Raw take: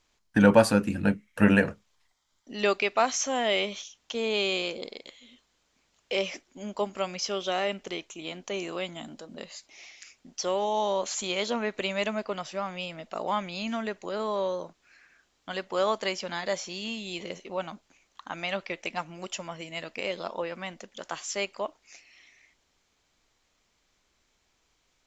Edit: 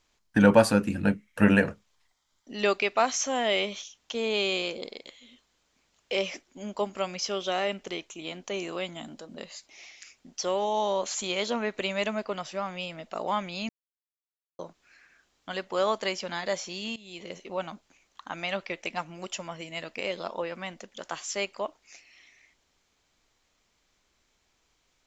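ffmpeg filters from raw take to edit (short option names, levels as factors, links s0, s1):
-filter_complex "[0:a]asplit=4[s0][s1][s2][s3];[s0]atrim=end=13.69,asetpts=PTS-STARTPTS,afade=t=out:st=13.686:d=0.004:c=hsin[s4];[s1]atrim=start=13.69:end=14.59,asetpts=PTS-STARTPTS,volume=0[s5];[s2]atrim=start=14.59:end=16.96,asetpts=PTS-STARTPTS,afade=t=in:d=0.004:c=hsin,afade=t=out:st=2.366:d=0.004:c=hsin:silence=0.141254[s6];[s3]atrim=start=16.96,asetpts=PTS-STARTPTS,afade=t=in:d=0.49:silence=0.141254[s7];[s4][s5][s6][s7]concat=n=4:v=0:a=1"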